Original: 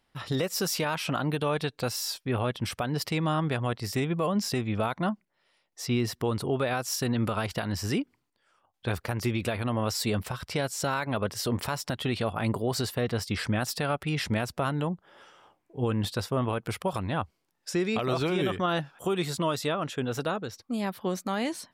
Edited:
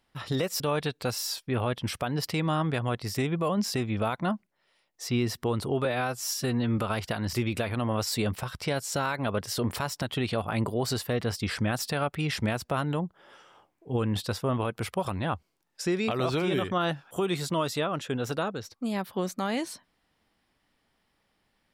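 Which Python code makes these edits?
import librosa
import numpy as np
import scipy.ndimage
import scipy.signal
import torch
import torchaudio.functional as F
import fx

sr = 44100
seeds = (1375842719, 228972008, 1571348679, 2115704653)

y = fx.edit(x, sr, fx.cut(start_s=0.6, length_s=0.78),
    fx.stretch_span(start_s=6.63, length_s=0.62, factor=1.5),
    fx.cut(start_s=7.8, length_s=1.41), tone=tone)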